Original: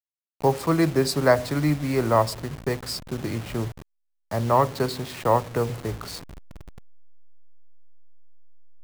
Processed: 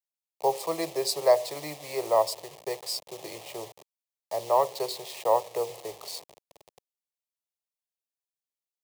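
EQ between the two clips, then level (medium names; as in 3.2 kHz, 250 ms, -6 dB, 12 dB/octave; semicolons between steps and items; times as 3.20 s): high-pass 420 Hz 12 dB/octave; static phaser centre 610 Hz, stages 4; 0.0 dB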